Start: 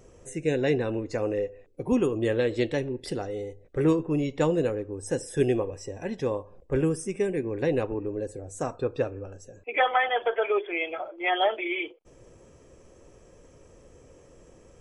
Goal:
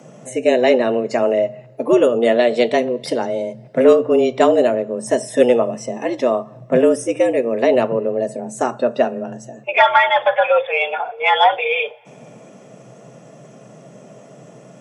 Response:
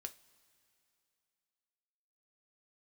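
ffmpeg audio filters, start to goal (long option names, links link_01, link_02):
-filter_complex "[0:a]afreqshift=120,acontrast=80,asplit=2[link_01][link_02];[1:a]atrim=start_sample=2205,lowpass=7200[link_03];[link_02][link_03]afir=irnorm=-1:irlink=0,volume=-2dB[link_04];[link_01][link_04]amix=inputs=2:normalize=0,volume=1dB"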